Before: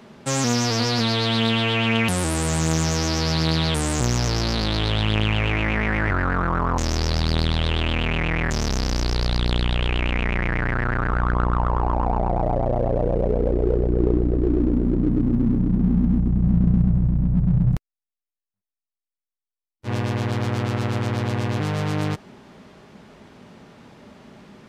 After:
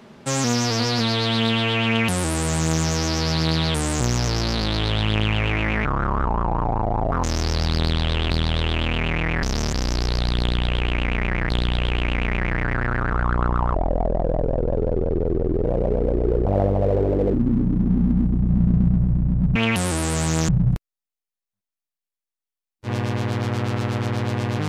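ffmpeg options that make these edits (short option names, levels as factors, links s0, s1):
-filter_complex "[0:a]asplit=13[s0][s1][s2][s3][s4][s5][s6][s7][s8][s9][s10][s11][s12];[s0]atrim=end=5.854[s13];[s1]atrim=start=5.85:end=6.66,asetpts=PTS-STARTPTS,asetrate=28224,aresample=44100,atrim=end_sample=55814,asetpts=PTS-STARTPTS[s14];[s2]atrim=start=6.656:end=7.852[s15];[s3]atrim=start=7.378:end=8.502[s16];[s4]atrim=start=8.498:end=8.812,asetpts=PTS-STARTPTS,areverse[s17];[s5]atrim=start=8.808:end=10.572[s18];[s6]atrim=start=9.468:end=11.724[s19];[s7]atrim=start=11.72:end=13.03,asetpts=PTS-STARTPTS,asetrate=30429,aresample=44100,atrim=end_sample=83726,asetpts=PTS-STARTPTS[s20];[s8]atrim=start=13.026:end=13.854[s21];[s9]atrim=start=13.85:end=15.27,asetpts=PTS-STARTPTS,asetrate=71883,aresample=44100,atrim=end_sample=38418,asetpts=PTS-STARTPTS[s22];[s10]atrim=start=15.266:end=17.492[s23];[s11]atrim=start=1.878:end=2.812[s24];[s12]atrim=start=17.488[s25];[s13][s14]acrossfade=d=0.004:c1=hsin:c2=hsin[s26];[s26][s15]acrossfade=d=0.004:c1=hsin:c2=hsin[s27];[s27][s16]acrossfade=d=0.004:c1=hsin:c2=hsin[s28];[s28][s17]acrossfade=d=0.004:c1=hsin:c2=hsin[s29];[s29][s18]acrossfade=d=0.004:c1=hsin:c2=hsin[s30];[s30][s19]acrossfade=d=0.004:c1=hsin:c2=hsin[s31];[s31][s20]acrossfade=d=0.004:c1=hsin:c2=hsin[s32];[s32][s21]acrossfade=d=0.004:c1=hsin:c2=hsin[s33];[s33][s22]acrossfade=d=0.004:c1=hsin:c2=hsin[s34];[s34][s23]acrossfade=d=0.004:c1=hsin:c2=hsin[s35];[s35][s24]acrossfade=d=0.004:c1=hsin:c2=hsin[s36];[s36][s25]acrossfade=d=0.004:c1=hsin:c2=hsin"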